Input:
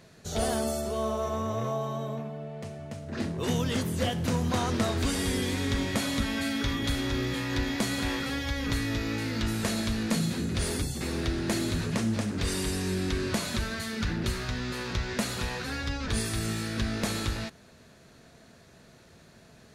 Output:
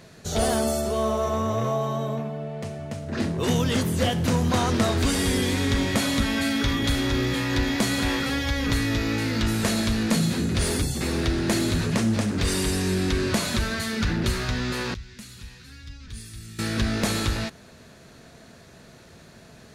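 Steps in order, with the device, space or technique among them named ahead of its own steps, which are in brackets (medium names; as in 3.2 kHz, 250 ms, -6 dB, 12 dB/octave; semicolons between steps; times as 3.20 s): parallel distortion (in parallel at -11.5 dB: hard clipper -28.5 dBFS, distortion -10 dB); 14.94–16.59 s: on the sum: amplifier tone stack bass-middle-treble 6-0-2; trim +4 dB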